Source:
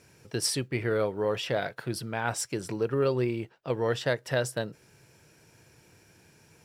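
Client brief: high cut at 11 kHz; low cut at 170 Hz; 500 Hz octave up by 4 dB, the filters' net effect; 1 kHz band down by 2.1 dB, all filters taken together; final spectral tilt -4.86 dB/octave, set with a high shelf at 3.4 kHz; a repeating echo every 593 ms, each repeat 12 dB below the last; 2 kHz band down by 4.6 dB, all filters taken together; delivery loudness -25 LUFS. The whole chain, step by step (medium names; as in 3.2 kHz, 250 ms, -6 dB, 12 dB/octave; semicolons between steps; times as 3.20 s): high-pass 170 Hz; low-pass 11 kHz; peaking EQ 500 Hz +6 dB; peaking EQ 1 kHz -4.5 dB; peaking EQ 2 kHz -3.5 dB; treble shelf 3.4 kHz -4.5 dB; feedback delay 593 ms, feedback 25%, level -12 dB; trim +3 dB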